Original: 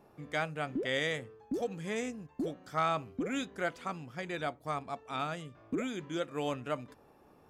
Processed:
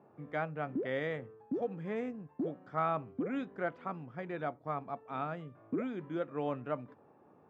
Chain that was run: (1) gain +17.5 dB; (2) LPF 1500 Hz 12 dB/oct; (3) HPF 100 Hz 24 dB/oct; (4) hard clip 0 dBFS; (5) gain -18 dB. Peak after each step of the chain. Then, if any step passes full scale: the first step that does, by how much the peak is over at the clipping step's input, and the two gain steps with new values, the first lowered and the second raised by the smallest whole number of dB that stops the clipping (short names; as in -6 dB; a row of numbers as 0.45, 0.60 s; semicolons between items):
-3.5, -4.0, -2.0, -2.0, -20.0 dBFS; no overload